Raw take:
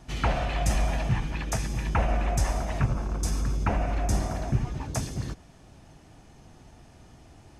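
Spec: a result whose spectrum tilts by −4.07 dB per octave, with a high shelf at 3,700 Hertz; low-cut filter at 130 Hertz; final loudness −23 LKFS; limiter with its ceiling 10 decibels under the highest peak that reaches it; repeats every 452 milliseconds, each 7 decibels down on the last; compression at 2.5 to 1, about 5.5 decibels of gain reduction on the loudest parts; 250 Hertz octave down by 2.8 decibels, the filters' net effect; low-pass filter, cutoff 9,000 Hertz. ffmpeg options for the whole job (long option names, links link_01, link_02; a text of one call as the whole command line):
ffmpeg -i in.wav -af "highpass=130,lowpass=9000,equalizer=frequency=250:width_type=o:gain=-3,highshelf=frequency=3700:gain=5,acompressor=threshold=-32dB:ratio=2.5,alimiter=level_in=3dB:limit=-24dB:level=0:latency=1,volume=-3dB,aecho=1:1:452|904|1356|1808|2260:0.447|0.201|0.0905|0.0407|0.0183,volume=13.5dB" out.wav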